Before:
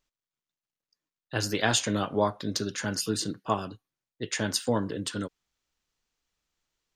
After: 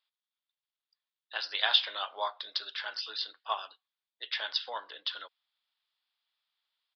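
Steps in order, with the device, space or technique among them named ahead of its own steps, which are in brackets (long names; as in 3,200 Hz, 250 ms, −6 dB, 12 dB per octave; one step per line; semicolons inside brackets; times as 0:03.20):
musical greeting card (downsampling to 11,025 Hz; high-pass filter 750 Hz 24 dB per octave; parametric band 3,500 Hz +10 dB 0.4 octaves)
level −3 dB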